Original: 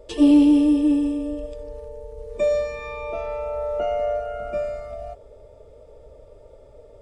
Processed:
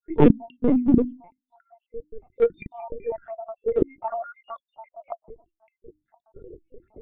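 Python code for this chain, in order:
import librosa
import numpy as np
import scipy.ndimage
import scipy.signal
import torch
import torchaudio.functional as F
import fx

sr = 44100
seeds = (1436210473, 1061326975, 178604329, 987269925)

p1 = fx.spec_dropout(x, sr, seeds[0], share_pct=85)
p2 = scipy.signal.sosfilt(scipy.signal.bessel(4, 1700.0, 'lowpass', norm='mag', fs=sr, output='sos'), p1)
p3 = fx.hum_notches(p2, sr, base_hz=50, count=8)
p4 = fx.formant_shift(p3, sr, semitones=-4)
p5 = 10.0 ** (-23.0 / 20.0) * (np.abs((p4 / 10.0 ** (-23.0 / 20.0) + 3.0) % 4.0 - 2.0) - 1.0)
p6 = p4 + (p5 * librosa.db_to_amplitude(-8.0))
p7 = fx.lpc_vocoder(p6, sr, seeds[1], excitation='pitch_kept', order=16)
y = p7 * librosa.db_to_amplitude(4.5)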